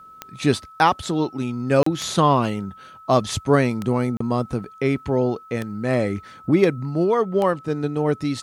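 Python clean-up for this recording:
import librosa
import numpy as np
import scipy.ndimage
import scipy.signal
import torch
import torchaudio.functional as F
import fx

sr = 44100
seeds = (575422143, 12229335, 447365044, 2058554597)

y = fx.fix_declick_ar(x, sr, threshold=10.0)
y = fx.notch(y, sr, hz=1300.0, q=30.0)
y = fx.fix_interpolate(y, sr, at_s=(1.83, 4.17), length_ms=34.0)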